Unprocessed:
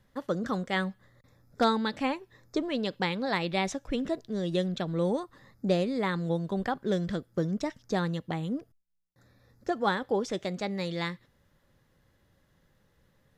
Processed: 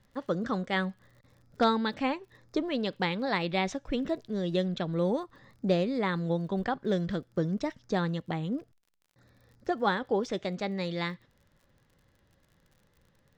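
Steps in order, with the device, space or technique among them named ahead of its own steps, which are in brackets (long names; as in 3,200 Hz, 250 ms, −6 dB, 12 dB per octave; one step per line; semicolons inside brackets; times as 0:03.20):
lo-fi chain (low-pass filter 5,600 Hz 12 dB per octave; tape wow and flutter 19 cents; surface crackle 41 per second −51 dBFS)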